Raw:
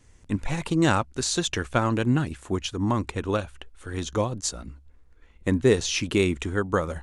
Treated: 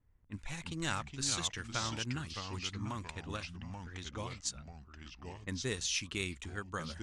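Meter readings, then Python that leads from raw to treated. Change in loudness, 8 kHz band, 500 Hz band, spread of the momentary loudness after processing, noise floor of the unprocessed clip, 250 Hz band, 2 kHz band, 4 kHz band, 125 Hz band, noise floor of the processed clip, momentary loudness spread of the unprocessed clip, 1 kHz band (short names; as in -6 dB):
-12.5 dB, -6.5 dB, -20.0 dB, 14 LU, -54 dBFS, -17.5 dB, -10.0 dB, -6.5 dB, -14.0 dB, -58 dBFS, 11 LU, -13.0 dB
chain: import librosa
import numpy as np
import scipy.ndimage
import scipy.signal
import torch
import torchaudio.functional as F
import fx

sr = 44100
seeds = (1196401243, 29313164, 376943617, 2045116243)

y = fx.env_lowpass(x, sr, base_hz=860.0, full_db=-22.0)
y = fx.echo_pitch(y, sr, ms=283, semitones=-3, count=2, db_per_echo=-6.0)
y = fx.tone_stack(y, sr, knobs='5-5-5')
y = fx.attack_slew(y, sr, db_per_s=510.0)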